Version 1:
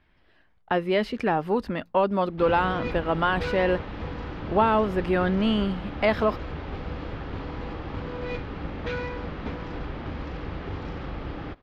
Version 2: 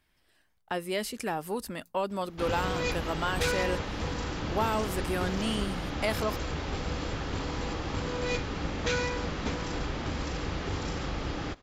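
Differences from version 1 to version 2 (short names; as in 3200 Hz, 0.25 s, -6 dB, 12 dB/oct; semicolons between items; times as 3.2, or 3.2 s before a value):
speech -9.5 dB; master: remove air absorption 330 m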